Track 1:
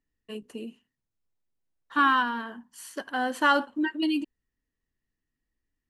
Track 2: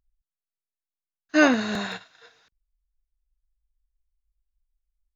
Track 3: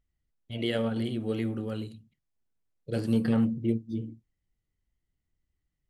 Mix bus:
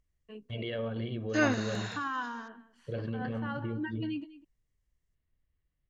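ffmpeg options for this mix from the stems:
-filter_complex "[0:a]lowpass=2.6k,alimiter=limit=-17.5dB:level=0:latency=1:release=92,volume=-8.5dB,asplit=2[a][b];[b]volume=-17.5dB[c];[1:a]acrossover=split=2500[d][e];[e]acompressor=threshold=-44dB:ratio=4:attack=1:release=60[f];[d][f]amix=inputs=2:normalize=0,equalizer=f=6.5k:w=0.73:g=14.5,volume=-9.5dB[g];[2:a]lowpass=f=3.5k:w=0.5412,lowpass=f=3.5k:w=1.3066,aecho=1:1:1.8:0.46,volume=-1dB[h];[a][h]amix=inputs=2:normalize=0,alimiter=level_in=3dB:limit=-24dB:level=0:latency=1:release=70,volume=-3dB,volume=0dB[i];[c]aecho=0:1:201:1[j];[g][i][j]amix=inputs=3:normalize=0"

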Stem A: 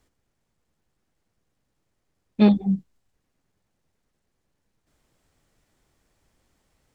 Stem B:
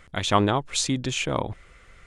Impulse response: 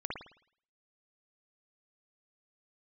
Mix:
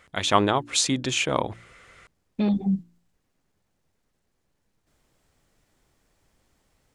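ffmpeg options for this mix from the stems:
-filter_complex "[0:a]alimiter=limit=-18.5dB:level=0:latency=1:release=27,volume=-4dB,asplit=3[a][b][c];[a]atrim=end=0.75,asetpts=PTS-STARTPTS,afade=t=out:st=0.746:d=0.004:c=hsin[d];[b]atrim=start=0.75:end=1.29,asetpts=PTS-STARTPTS,volume=0[e];[c]atrim=start=1.29,asetpts=PTS-STARTPTS,afade=t=in:d=0.004:c=hsin[f];[d][e][f]concat=n=3:v=0:a=1[g];[1:a]highpass=48,lowshelf=f=140:g=-9.5,volume=-2.5dB[h];[g][h]amix=inputs=2:normalize=0,bandreject=f=57.55:t=h:w=4,bandreject=f=115.1:t=h:w=4,bandreject=f=172.65:t=h:w=4,bandreject=f=230.2:t=h:w=4,bandreject=f=287.75:t=h:w=4,bandreject=f=345.3:t=h:w=4,dynaudnorm=f=110:g=3:m=5.5dB"

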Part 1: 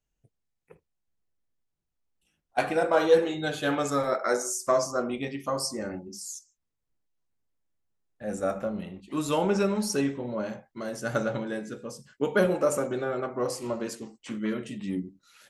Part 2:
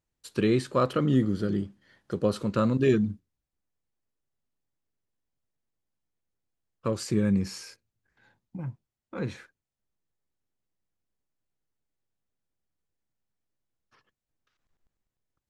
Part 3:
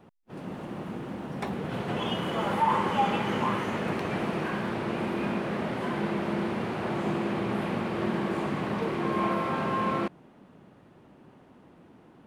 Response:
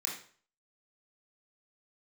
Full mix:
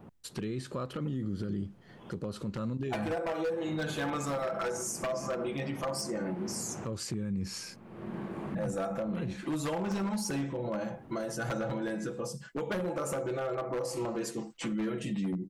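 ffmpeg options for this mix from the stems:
-filter_complex "[0:a]equalizer=f=730:t=o:w=1.8:g=5.5,aecho=1:1:6:0.81,acompressor=threshold=-21dB:ratio=10,adelay=350,volume=1.5dB[a];[1:a]acompressor=threshold=-26dB:ratio=6,volume=0.5dB,asplit=2[b][c];[2:a]acompressor=threshold=-44dB:ratio=2.5,equalizer=f=4.5k:w=0.53:g=-7,volume=1.5dB[d];[c]apad=whole_len=540748[e];[d][e]sidechaincompress=threshold=-58dB:ratio=12:attack=21:release=366[f];[a][b][f]amix=inputs=3:normalize=0,bass=f=250:g=5,treble=f=4k:g=1,aeval=exprs='0.141*(abs(mod(val(0)/0.141+3,4)-2)-1)':c=same,alimiter=level_in=2.5dB:limit=-24dB:level=0:latency=1:release=171,volume=-2.5dB"

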